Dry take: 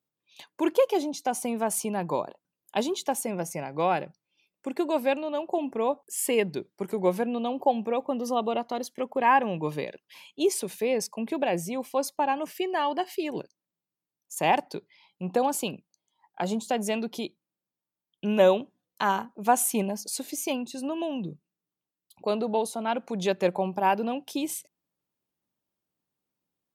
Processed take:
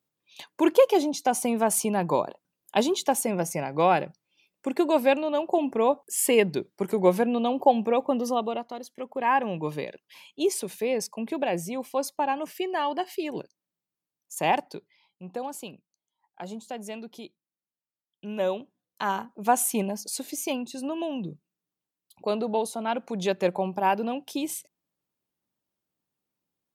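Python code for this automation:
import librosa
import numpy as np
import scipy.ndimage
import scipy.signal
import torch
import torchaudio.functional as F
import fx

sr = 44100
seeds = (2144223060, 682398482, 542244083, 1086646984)

y = fx.gain(x, sr, db=fx.line((8.16, 4.0), (8.81, -7.0), (9.51, -0.5), (14.51, -0.5), (15.27, -9.0), (18.27, -9.0), (19.4, 0.0)))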